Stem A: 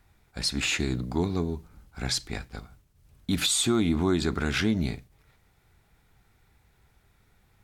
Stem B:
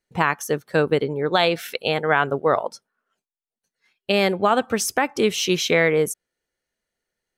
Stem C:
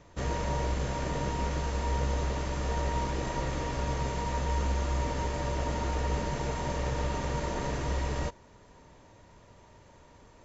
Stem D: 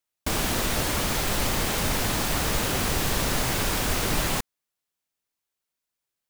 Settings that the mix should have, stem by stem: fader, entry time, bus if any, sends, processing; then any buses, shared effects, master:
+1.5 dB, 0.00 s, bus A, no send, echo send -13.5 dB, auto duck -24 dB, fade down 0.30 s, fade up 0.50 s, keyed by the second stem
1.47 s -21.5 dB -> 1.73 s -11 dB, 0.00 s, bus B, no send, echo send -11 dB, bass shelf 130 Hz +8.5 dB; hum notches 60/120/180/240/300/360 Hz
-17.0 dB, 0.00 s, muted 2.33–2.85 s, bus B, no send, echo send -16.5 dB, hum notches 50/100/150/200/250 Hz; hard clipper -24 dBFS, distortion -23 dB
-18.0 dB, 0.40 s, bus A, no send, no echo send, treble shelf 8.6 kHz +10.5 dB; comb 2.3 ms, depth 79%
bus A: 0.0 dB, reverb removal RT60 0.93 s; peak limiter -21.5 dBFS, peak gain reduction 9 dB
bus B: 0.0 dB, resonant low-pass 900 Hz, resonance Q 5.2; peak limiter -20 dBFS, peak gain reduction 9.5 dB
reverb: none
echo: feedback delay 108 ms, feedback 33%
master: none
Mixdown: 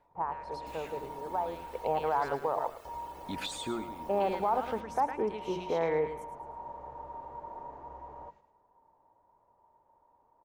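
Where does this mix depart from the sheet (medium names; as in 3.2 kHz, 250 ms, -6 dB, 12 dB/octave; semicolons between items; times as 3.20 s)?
stem A +1.5 dB -> -8.0 dB; stem D -18.0 dB -> -29.5 dB; master: extra tone controls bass -8 dB, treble -10 dB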